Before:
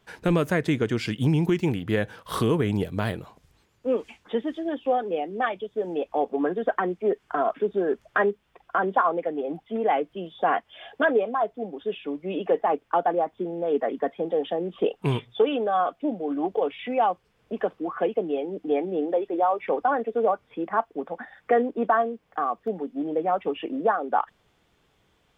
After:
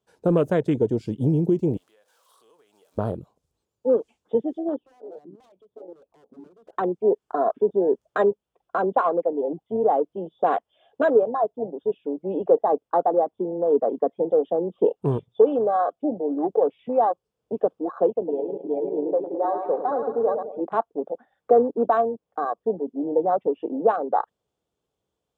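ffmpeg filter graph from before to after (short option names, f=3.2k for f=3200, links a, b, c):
-filter_complex "[0:a]asettb=1/sr,asplit=3[a][b][c];[a]atrim=end=1.774[d];[b]atrim=start=1.77:end=2.98,asetpts=PTS-STARTPTS,afade=t=in:d=0.004:c=qsin,afade=t=out:st=1.206:d=0.004:c=qsin,aeval=exprs='val(0)+0.5*0.0126*sgn(val(0))':c=same,highpass=870,acompressor=threshold=-42dB:ratio=4:attack=3.2:release=140:knee=1:detection=peak[e];[c]atrim=start=2.976[f];[d][e]acrossfade=d=0.004:c1=hsin:c2=qsin[g];[g][f]acrossfade=d=0.004:c1=qsin:c2=hsin,asettb=1/sr,asplit=3[h][i][j];[h]atrim=end=4.764[k];[i]atrim=start=4.76:end=6.73,asetpts=PTS-STARTPTS,afade=t=in:d=0.004:c=qsin,afade=t=out:st=1.966:d=0.004:c=qsin,lowpass=f=1.3k:p=1,acompressor=threshold=-43dB:ratio=2:attack=3.2:release=140:knee=1:detection=peak,aeval=exprs='0.015*(abs(mod(val(0)/0.015+3,4)-2)-1)':c=same[l];[j]atrim=start=6.726[m];[k][l]acrossfade=d=0.004:c1=hsin:c2=qsin[n];[n][m]acrossfade=d=0.004:c1=qsin:c2=hsin,asettb=1/sr,asplit=3[o][p][q];[o]atrim=end=18.104[r];[p]atrim=start=18.1:end=20.61,asetpts=PTS-STARTPTS,afade=t=in:d=0.004:c=qsin,afade=t=out:st=2.506:d=0.004:c=qsin,lowpass=3.1k,aecho=1:1:106|212|318|424|530|636|742:0.473|0.265|0.148|0.0831|0.0465|0.0261|0.0146,atrim=end_sample=110691,flanger=delay=0.9:depth=2.1:regen=-64:speed=1.7:shape=sinusoidal[s];[q]atrim=start=20.606[t];[r][s]acrossfade=d=0.004:c1=hsin:c2=qsin[u];[u][t]acrossfade=d=0.004:c1=qsin:c2=hsin,highpass=43,afwtdn=0.0316,equalizer=f=500:t=o:w=1:g=6,equalizer=f=2k:t=o:w=1:g=-10,equalizer=f=8k:t=o:w=1:g=5"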